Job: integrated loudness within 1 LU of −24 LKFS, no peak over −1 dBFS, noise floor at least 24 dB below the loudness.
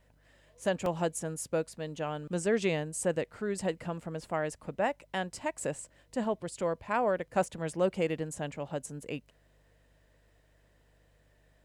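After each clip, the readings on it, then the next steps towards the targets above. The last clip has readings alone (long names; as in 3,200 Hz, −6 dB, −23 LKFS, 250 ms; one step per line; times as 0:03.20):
number of dropouts 1; longest dropout 1.8 ms; mains hum 50 Hz; hum harmonics up to 150 Hz; level of the hum −58 dBFS; integrated loudness −33.5 LKFS; sample peak −15.5 dBFS; target loudness −24.0 LKFS
→ repair the gap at 0:00.86, 1.8 ms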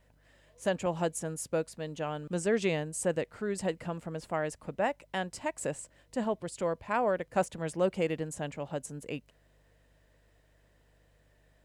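number of dropouts 0; mains hum 50 Hz; hum harmonics up to 150 Hz; level of the hum −58 dBFS
→ hum removal 50 Hz, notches 3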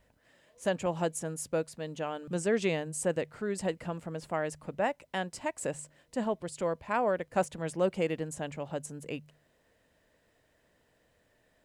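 mains hum none found; integrated loudness −33.5 LKFS; sample peak −16.0 dBFS; target loudness −24.0 LKFS
→ level +9.5 dB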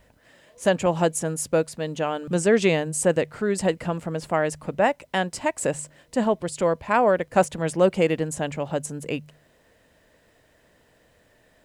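integrated loudness −24.0 LKFS; sample peak −6.5 dBFS; background noise floor −61 dBFS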